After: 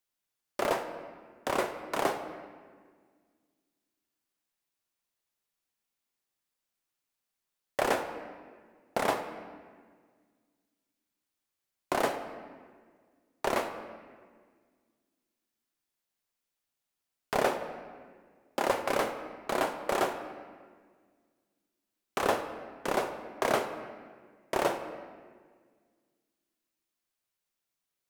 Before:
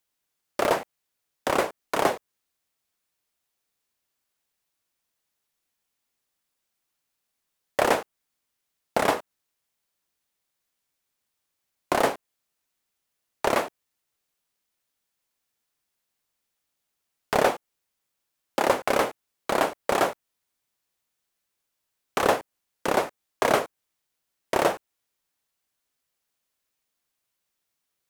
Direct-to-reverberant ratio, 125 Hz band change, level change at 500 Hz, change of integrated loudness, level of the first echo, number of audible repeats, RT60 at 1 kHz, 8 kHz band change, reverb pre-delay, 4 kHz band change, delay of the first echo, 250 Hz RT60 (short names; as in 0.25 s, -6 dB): 7.0 dB, -6.0 dB, -5.5 dB, -6.5 dB, none, none, 1.6 s, -6.0 dB, 3 ms, -6.0 dB, none, 2.3 s